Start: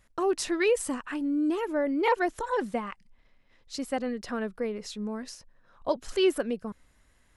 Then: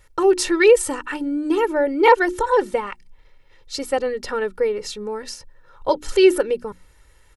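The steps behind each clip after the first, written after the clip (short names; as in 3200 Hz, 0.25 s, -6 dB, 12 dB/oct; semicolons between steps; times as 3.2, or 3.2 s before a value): notches 60/120/180/240/300/360 Hz; comb 2.2 ms, depth 73%; gain +7.5 dB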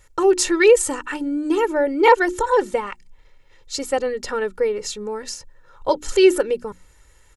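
bell 7000 Hz +7.5 dB 0.36 oct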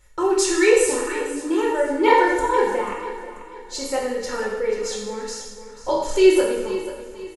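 feedback echo 0.488 s, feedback 38%, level -13.5 dB; two-slope reverb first 0.93 s, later 2.4 s, from -24 dB, DRR -4 dB; gain -6 dB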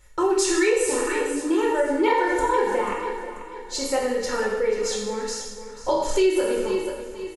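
compressor 4:1, threshold -19 dBFS, peak gain reduction 9.5 dB; gain +1.5 dB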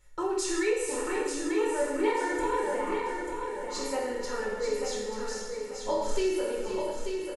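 on a send: feedback echo 0.889 s, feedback 35%, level -6 dB; on the sum: shoebox room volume 67 m³, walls mixed, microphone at 0.32 m; gain -9 dB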